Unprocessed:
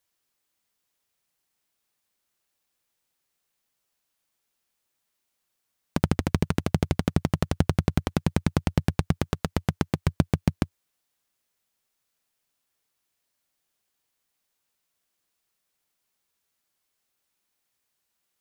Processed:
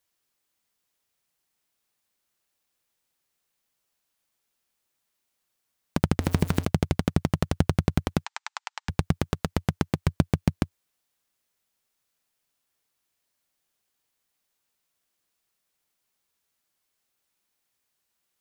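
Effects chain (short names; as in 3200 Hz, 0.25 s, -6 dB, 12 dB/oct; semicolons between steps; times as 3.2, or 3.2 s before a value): 6.2–6.65 zero-crossing step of -31.5 dBFS; 8.25–8.89 Chebyshev band-pass 840–7700 Hz, order 4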